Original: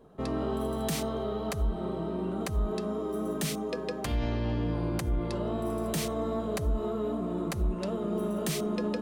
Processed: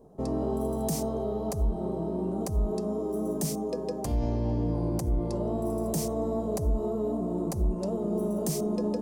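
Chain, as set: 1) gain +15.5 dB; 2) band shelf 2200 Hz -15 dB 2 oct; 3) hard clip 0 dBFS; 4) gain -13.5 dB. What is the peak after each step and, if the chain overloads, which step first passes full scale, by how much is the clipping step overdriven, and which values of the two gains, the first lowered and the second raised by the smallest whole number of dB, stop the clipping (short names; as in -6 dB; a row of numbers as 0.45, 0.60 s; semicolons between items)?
-4.5, -5.0, -5.0, -18.5 dBFS; no overload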